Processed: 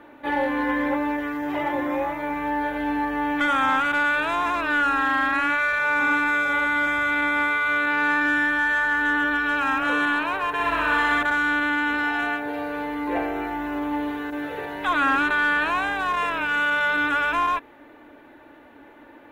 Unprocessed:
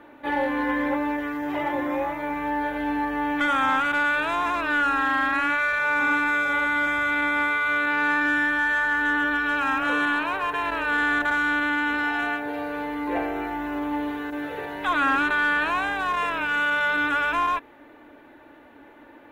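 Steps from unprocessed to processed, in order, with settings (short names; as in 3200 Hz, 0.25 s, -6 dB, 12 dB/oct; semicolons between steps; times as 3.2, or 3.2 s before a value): 10.53–11.23 flutter echo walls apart 10.7 m, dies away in 1.2 s; gain +1 dB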